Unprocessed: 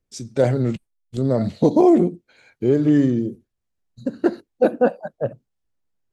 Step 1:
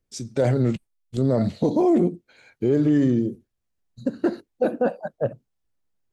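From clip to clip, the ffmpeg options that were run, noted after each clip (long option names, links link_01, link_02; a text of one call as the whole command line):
ffmpeg -i in.wav -af "alimiter=limit=-12dB:level=0:latency=1:release=15" out.wav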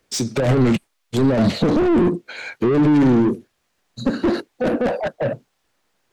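ffmpeg -i in.wav -filter_complex "[0:a]asplit=2[link_01][link_02];[link_02]highpass=frequency=720:poles=1,volume=23dB,asoftclip=type=tanh:threshold=-11.5dB[link_03];[link_01][link_03]amix=inputs=2:normalize=0,lowpass=frequency=3800:poles=1,volume=-6dB,acrossover=split=270[link_04][link_05];[link_05]asoftclip=type=tanh:threshold=-25.5dB[link_06];[link_04][link_06]amix=inputs=2:normalize=0,volume=6dB" out.wav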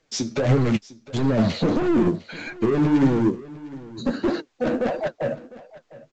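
ffmpeg -i in.wav -af "flanger=delay=6.2:depth=6.5:regen=25:speed=1.6:shape=sinusoidal,aecho=1:1:704:0.112" -ar 16000 -c:a pcm_mulaw out.wav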